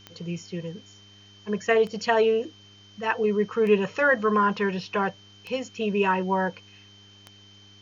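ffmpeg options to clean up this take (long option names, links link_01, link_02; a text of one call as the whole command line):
ffmpeg -i in.wav -af "adeclick=threshold=4,bandreject=frequency=100.7:width_type=h:width=4,bandreject=frequency=201.4:width_type=h:width=4,bandreject=frequency=302.1:width_type=h:width=4,bandreject=frequency=402.8:width_type=h:width=4,bandreject=frequency=3100:width=30,agate=range=-21dB:threshold=-44dB" out.wav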